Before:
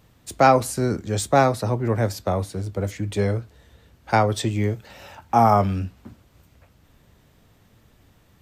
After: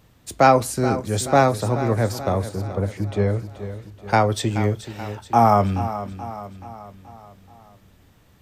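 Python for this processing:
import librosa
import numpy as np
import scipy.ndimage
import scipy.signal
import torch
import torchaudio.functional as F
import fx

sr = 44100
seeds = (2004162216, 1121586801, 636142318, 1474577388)

y = fx.lowpass(x, sr, hz=1900.0, slope=6, at=(2.49, 3.39))
y = fx.echo_feedback(y, sr, ms=429, feedback_pct=52, wet_db=-12.5)
y = y * librosa.db_to_amplitude(1.0)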